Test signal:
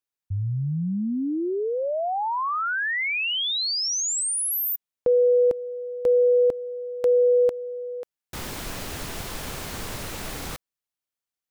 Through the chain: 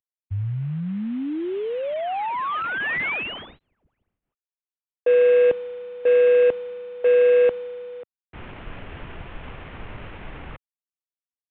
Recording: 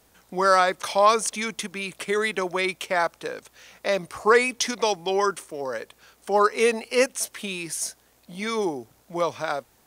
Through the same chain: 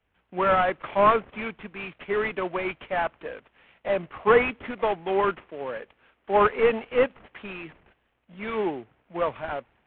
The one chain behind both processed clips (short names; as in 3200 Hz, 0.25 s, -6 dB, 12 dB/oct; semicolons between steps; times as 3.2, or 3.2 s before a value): CVSD 16 kbps; three-band expander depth 40%